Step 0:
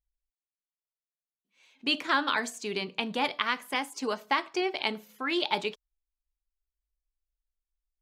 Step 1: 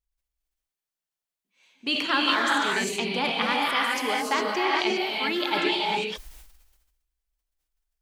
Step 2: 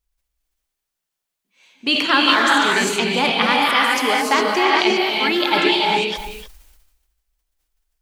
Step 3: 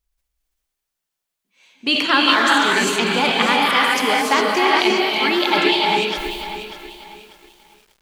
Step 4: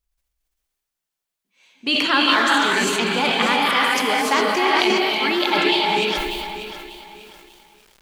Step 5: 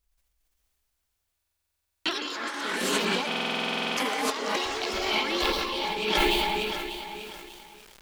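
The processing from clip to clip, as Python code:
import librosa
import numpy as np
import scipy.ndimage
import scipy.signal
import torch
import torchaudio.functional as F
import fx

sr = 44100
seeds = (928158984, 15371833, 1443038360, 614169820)

y1 = fx.rev_gated(x, sr, seeds[0], gate_ms=430, shape='rising', drr_db=-3.5)
y1 = fx.sustainer(y1, sr, db_per_s=48.0)
y2 = y1 + 10.0 ** (-14.0 / 20.0) * np.pad(y1, (int(300 * sr / 1000.0), 0))[:len(y1)]
y2 = y2 * 10.0 ** (8.0 / 20.0)
y3 = fx.echo_crushed(y2, sr, ms=593, feedback_pct=35, bits=7, wet_db=-11.5)
y4 = fx.sustainer(y3, sr, db_per_s=22.0)
y4 = y4 * 10.0 ** (-2.5 / 20.0)
y5 = fx.over_compress(y4, sr, threshold_db=-24.0, ratio=-0.5)
y5 = fx.echo_pitch(y5, sr, ms=521, semitones=4, count=3, db_per_echo=-6.0)
y5 = fx.buffer_glitch(y5, sr, at_s=(1.36, 3.27), block=2048, repeats=14)
y5 = y5 * 10.0 ** (-3.5 / 20.0)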